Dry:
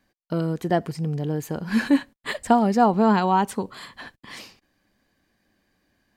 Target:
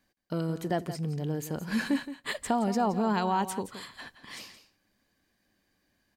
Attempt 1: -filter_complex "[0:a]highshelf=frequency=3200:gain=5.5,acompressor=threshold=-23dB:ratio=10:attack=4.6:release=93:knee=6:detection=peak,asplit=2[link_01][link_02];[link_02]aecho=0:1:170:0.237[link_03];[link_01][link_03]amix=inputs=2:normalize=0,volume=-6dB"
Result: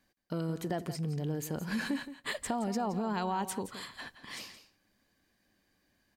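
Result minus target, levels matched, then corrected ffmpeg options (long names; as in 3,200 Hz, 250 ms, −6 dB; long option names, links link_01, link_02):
downward compressor: peak gain reduction +7 dB
-filter_complex "[0:a]highshelf=frequency=3200:gain=5.5,acompressor=threshold=-15dB:ratio=10:attack=4.6:release=93:knee=6:detection=peak,asplit=2[link_01][link_02];[link_02]aecho=0:1:170:0.237[link_03];[link_01][link_03]amix=inputs=2:normalize=0,volume=-6dB"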